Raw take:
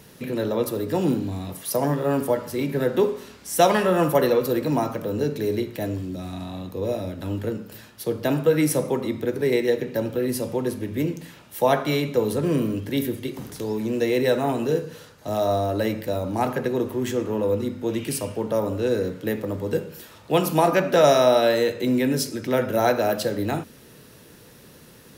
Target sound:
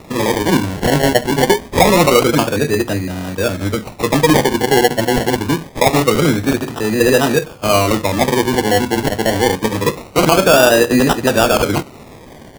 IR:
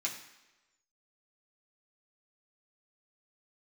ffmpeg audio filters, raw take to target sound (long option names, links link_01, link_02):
-af "equalizer=frequency=10000:width_type=o:width=2.5:gain=7,atempo=2,acrusher=samples=28:mix=1:aa=0.000001:lfo=1:lforange=16.8:lforate=0.25,alimiter=level_in=10.5dB:limit=-1dB:release=50:level=0:latency=1,volume=-1dB"